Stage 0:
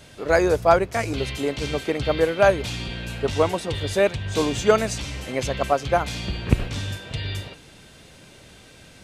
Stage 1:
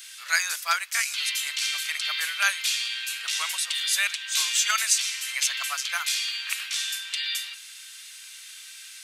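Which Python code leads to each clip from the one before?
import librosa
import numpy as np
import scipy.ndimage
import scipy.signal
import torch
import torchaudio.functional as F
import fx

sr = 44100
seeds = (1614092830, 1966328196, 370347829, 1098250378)

y = scipy.signal.sosfilt(scipy.signal.butter(4, 1400.0, 'highpass', fs=sr, output='sos'), x)
y = fx.tilt_eq(y, sr, slope=4.0)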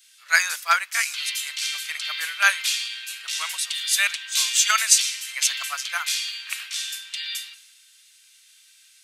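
y = fx.band_widen(x, sr, depth_pct=70)
y = y * librosa.db_to_amplitude(1.0)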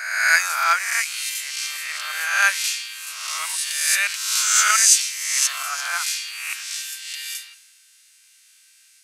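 y = fx.spec_swells(x, sr, rise_s=1.11)
y = fx.peak_eq(y, sr, hz=3500.0, db=-7.0, octaves=0.49)
y = y * librosa.db_to_amplitude(-1.0)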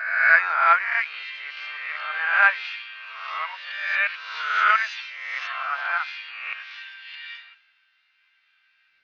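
y = fx.spec_quant(x, sr, step_db=15)
y = scipy.ndimage.gaussian_filter1d(y, 3.5, mode='constant')
y = y * librosa.db_to_amplitude(4.5)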